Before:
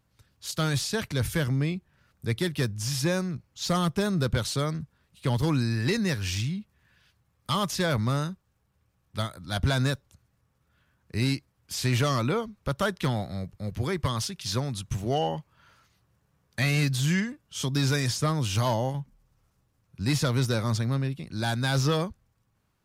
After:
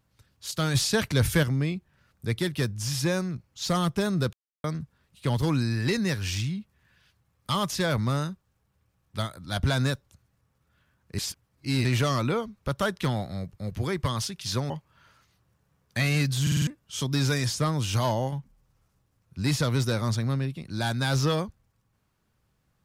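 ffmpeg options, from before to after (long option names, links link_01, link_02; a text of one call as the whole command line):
ffmpeg -i in.wav -filter_complex "[0:a]asplit=13[link_01][link_02][link_03][link_04][link_05][link_06][link_07][link_08][link_09][link_10][link_11][link_12][link_13];[link_01]atrim=end=0.752[link_14];[link_02]atrim=start=0.748:end=1.432,asetpts=PTS-STARTPTS,volume=4.5dB[link_15];[link_03]atrim=start=1.428:end=4.33,asetpts=PTS-STARTPTS,afade=type=out:start_time=2.898:duration=0.004:curve=hsin[link_16];[link_04]atrim=start=4.33:end=4.64,asetpts=PTS-STARTPTS,volume=0[link_17];[link_05]atrim=start=4.64:end=11.182,asetpts=PTS-STARTPTS,afade=type=in:duration=0.004:curve=hsin[link_18];[link_06]atrim=start=11.178:end=11.852,asetpts=PTS-STARTPTS,areverse[link_19];[link_07]atrim=start=11.848:end=14.702[link_20];[link_08]atrim=start=15.318:end=17.092[link_21];[link_09]atrim=start=17.038:end=17.092[link_22];[link_10]atrim=start=17.038:end=17.092[link_23];[link_11]atrim=start=17.038:end=17.092[link_24];[link_12]atrim=start=17.038:end=17.092[link_25];[link_13]atrim=start=17.288[link_26];[link_14][link_15]acrossfade=duration=0.004:curve1=hsin:curve2=hsin[link_27];[link_16][link_17][link_18]concat=n=3:v=0:a=1[link_28];[link_27][link_28]acrossfade=duration=0.004:curve1=hsin:curve2=hsin[link_29];[link_29][link_19]acrossfade=duration=0.004:curve1=hsin:curve2=hsin[link_30];[link_30][link_20]acrossfade=duration=0.004:curve1=hsin:curve2=hsin[link_31];[link_31][link_21]acrossfade=duration=0.004:curve1=hsin:curve2=hsin[link_32];[link_32][link_22]acrossfade=duration=0.004:curve1=hsin:curve2=hsin[link_33];[link_33][link_23]acrossfade=duration=0.004:curve1=hsin:curve2=hsin[link_34];[link_34][link_24]acrossfade=duration=0.004:curve1=hsin:curve2=hsin[link_35];[link_35][link_25]acrossfade=duration=0.004:curve1=hsin:curve2=hsin[link_36];[link_36][link_26]acrossfade=duration=0.004:curve1=hsin:curve2=hsin" out.wav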